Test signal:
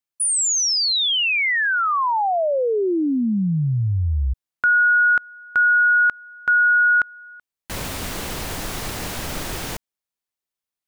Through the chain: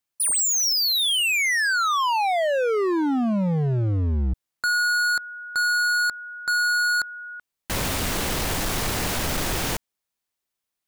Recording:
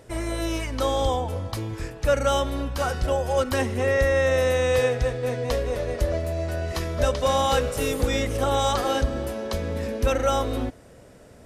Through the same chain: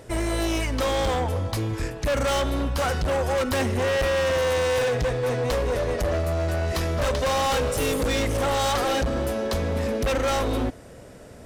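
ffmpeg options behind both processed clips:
ffmpeg -i in.wav -af "asoftclip=type=hard:threshold=-25.5dB,volume=4.5dB" out.wav

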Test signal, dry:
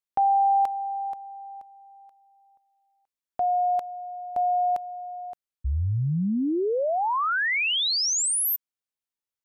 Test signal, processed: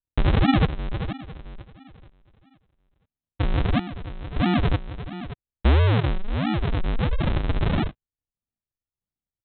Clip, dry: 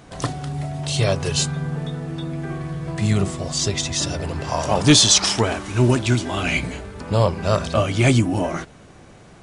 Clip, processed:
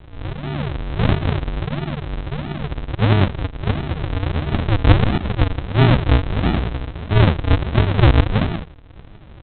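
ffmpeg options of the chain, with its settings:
ffmpeg -i in.wav -af "asubboost=boost=3:cutoff=97,aresample=8000,acrusher=samples=29:mix=1:aa=0.000001:lfo=1:lforange=29:lforate=1.5,aresample=44100,volume=3dB" out.wav

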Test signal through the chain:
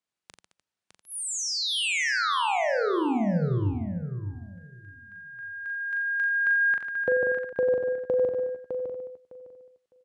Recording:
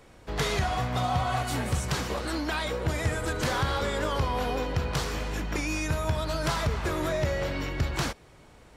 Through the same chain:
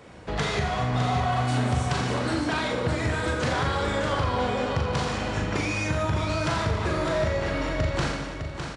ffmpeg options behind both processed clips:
ffmpeg -i in.wav -filter_complex "[0:a]highpass=67,equalizer=frequency=180:width=6:gain=3,asplit=2[link_01][link_02];[link_02]aecho=0:1:40|88|145.6|214.7|297.7:0.631|0.398|0.251|0.158|0.1[link_03];[link_01][link_03]amix=inputs=2:normalize=0,acompressor=threshold=-33dB:ratio=2,highshelf=frequency=6100:gain=-9,aresample=22050,aresample=44100,asplit=2[link_04][link_05];[link_05]aecho=0:1:607|1214|1821:0.447|0.0804|0.0145[link_06];[link_04][link_06]amix=inputs=2:normalize=0,volume=6dB" out.wav

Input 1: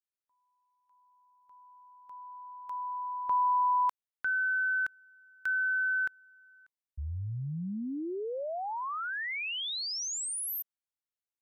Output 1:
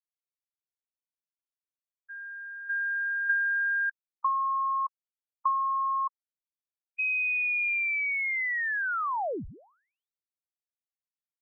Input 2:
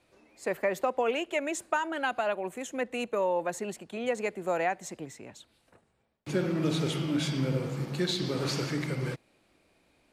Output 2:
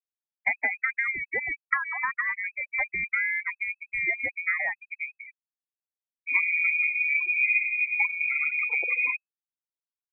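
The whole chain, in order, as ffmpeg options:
ffmpeg -i in.wav -filter_complex "[0:a]acrossover=split=170[link_01][link_02];[link_02]acompressor=threshold=-35dB:ratio=5:attack=90:release=868:knee=2.83:detection=peak[link_03];[link_01][link_03]amix=inputs=2:normalize=0,afftfilt=real='re*gte(hypot(re,im),0.0316)':imag='im*gte(hypot(re,im),0.0316)':win_size=1024:overlap=0.75,lowpass=frequency=2200:width_type=q:width=0.5098,lowpass=frequency=2200:width_type=q:width=0.6013,lowpass=frequency=2200:width_type=q:width=0.9,lowpass=frequency=2200:width_type=q:width=2.563,afreqshift=-2600,volume=7.5dB" out.wav

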